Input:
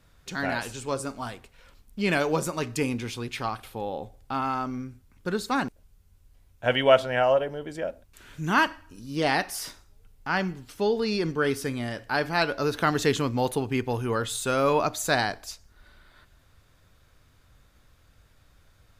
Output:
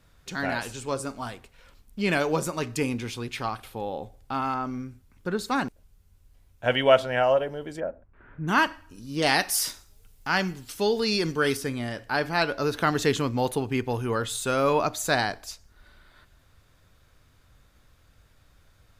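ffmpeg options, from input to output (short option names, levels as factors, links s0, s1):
-filter_complex "[0:a]asettb=1/sr,asplit=3[s0][s1][s2];[s0]atrim=end=4.544[s3];[s1]atrim=start=4.54:end=5.39,asetpts=PTS-STARTPTS,afade=t=in:d=0.004:c=qsin,afade=t=out:st=0.846:d=0.004:c=qsin,acrossover=split=2600[s4][s5];[s5]acompressor=threshold=0.00224:ratio=4:attack=1:release=60[s6];[s4][s6]amix=inputs=2:normalize=0[s7];[s2]atrim=start=5.386[s8];[s3][s7]acrossfade=d=0.004:c1=hsin:c2=qsin[s9];[s9][s8]acrossfade=d=0.004:c1=qsin:c2=hsin,asplit=3[s10][s11][s12];[s10]afade=t=out:st=7.79:d=0.02[s13];[s11]lowpass=f=1700:w=0.5412,lowpass=f=1700:w=1.3066,afade=t=in:st=7.79:d=0.02,afade=t=out:st=8.47:d=0.02[s14];[s12]afade=t=in:st=8.47:d=0.02[s15];[s13][s14][s15]amix=inputs=3:normalize=0,asettb=1/sr,asplit=3[s16][s17][s18];[s16]atrim=end=9.224[s19];[s17]atrim=start=9.22:end=11.57,asetpts=PTS-STARTPTS,afade=t=in:d=0.004:c=qsin,afade=t=out:st=2.346:d=0.004:c=qsin,highshelf=f=3100:g=10.5[s20];[s18]atrim=start=11.566[s21];[s19][s20]acrossfade=d=0.004:c1=hsin:c2=qsin[s22];[s22][s21]acrossfade=d=0.004:c1=qsin:c2=hsin"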